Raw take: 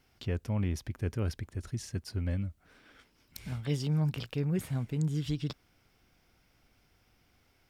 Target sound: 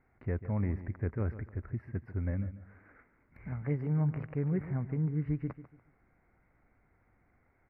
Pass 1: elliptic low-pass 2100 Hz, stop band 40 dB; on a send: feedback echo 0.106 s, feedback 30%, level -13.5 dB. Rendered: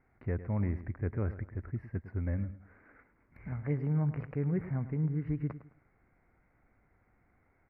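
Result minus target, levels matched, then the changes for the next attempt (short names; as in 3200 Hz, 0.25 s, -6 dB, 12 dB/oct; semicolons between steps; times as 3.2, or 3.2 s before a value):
echo 38 ms early
change: feedback echo 0.144 s, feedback 30%, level -13.5 dB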